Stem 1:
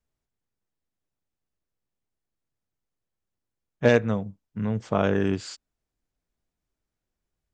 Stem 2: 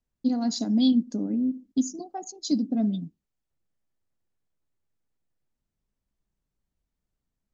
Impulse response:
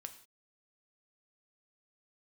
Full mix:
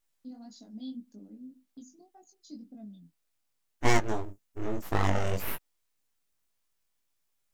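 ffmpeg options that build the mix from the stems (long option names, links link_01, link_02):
-filter_complex "[0:a]aexciter=amount=5.3:drive=6.9:freq=5400,aeval=exprs='abs(val(0))':channel_layout=same,volume=0dB[link_01];[1:a]agate=range=-8dB:threshold=-41dB:ratio=16:detection=peak,volume=-18.5dB[link_02];[link_01][link_02]amix=inputs=2:normalize=0,flanger=delay=19:depth=4.6:speed=1.8"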